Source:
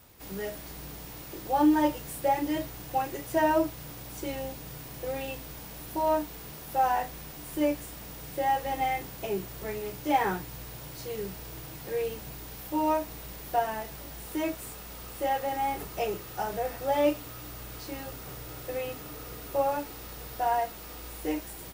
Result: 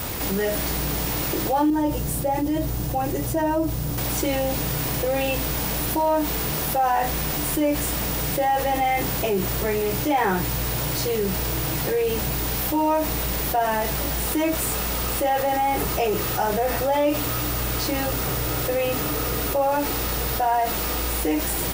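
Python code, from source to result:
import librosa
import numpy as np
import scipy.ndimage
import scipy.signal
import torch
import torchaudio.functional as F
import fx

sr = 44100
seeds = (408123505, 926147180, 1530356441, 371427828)

y = fx.curve_eq(x, sr, hz=(120.0, 2200.0, 6500.0), db=(0, -13, -8), at=(1.7, 3.98))
y = fx.env_flatten(y, sr, amount_pct=70)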